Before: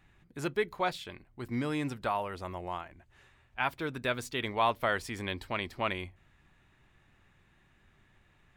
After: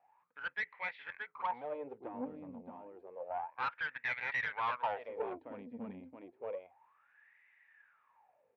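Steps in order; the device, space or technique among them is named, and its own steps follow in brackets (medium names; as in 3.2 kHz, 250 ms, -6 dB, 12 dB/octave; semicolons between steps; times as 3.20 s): 3.62–4.59 s: peaking EQ 1.9 kHz +5.5 dB 1.1 oct; delay 625 ms -5 dB; wah-wah guitar rig (wah-wah 0.3 Hz 230–2000 Hz, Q 12; valve stage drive 43 dB, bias 0.45; cabinet simulation 110–3600 Hz, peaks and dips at 150 Hz -3 dB, 220 Hz -4 dB, 350 Hz -10 dB, 500 Hz +9 dB, 880 Hz +8 dB, 2.4 kHz +6 dB); trim +10.5 dB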